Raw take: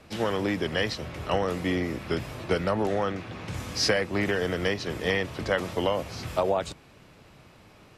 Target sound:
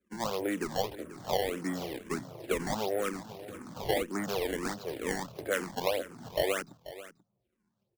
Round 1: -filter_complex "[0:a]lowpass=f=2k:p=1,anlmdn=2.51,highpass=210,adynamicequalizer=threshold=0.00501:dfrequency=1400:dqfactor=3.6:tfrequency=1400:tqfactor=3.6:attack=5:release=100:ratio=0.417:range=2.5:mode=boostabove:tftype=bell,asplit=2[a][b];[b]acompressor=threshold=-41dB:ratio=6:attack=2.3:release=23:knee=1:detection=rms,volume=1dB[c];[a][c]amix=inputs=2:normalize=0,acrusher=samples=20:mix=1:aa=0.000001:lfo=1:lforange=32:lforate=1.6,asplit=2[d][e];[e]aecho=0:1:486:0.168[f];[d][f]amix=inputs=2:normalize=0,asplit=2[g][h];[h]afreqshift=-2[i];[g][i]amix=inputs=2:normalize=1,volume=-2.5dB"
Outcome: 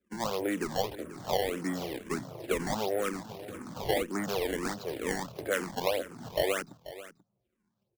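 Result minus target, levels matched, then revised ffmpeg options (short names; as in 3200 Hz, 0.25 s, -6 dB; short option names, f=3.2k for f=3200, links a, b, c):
compressor: peak gain reduction -7.5 dB
-filter_complex "[0:a]lowpass=f=2k:p=1,anlmdn=2.51,highpass=210,adynamicequalizer=threshold=0.00501:dfrequency=1400:dqfactor=3.6:tfrequency=1400:tqfactor=3.6:attack=5:release=100:ratio=0.417:range=2.5:mode=boostabove:tftype=bell,asplit=2[a][b];[b]acompressor=threshold=-50dB:ratio=6:attack=2.3:release=23:knee=1:detection=rms,volume=1dB[c];[a][c]amix=inputs=2:normalize=0,acrusher=samples=20:mix=1:aa=0.000001:lfo=1:lforange=32:lforate=1.6,asplit=2[d][e];[e]aecho=0:1:486:0.168[f];[d][f]amix=inputs=2:normalize=0,asplit=2[g][h];[h]afreqshift=-2[i];[g][i]amix=inputs=2:normalize=1,volume=-2.5dB"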